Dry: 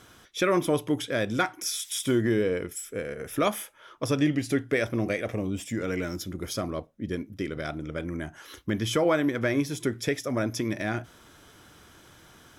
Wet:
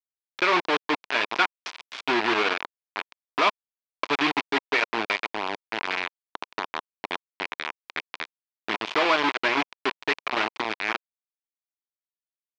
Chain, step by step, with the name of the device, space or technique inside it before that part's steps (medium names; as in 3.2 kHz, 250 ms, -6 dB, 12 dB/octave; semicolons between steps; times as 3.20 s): hand-held game console (bit crusher 4-bit; cabinet simulation 430–4300 Hz, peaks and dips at 530 Hz -9 dB, 1 kHz +5 dB, 2.4 kHz +5 dB); trim +3 dB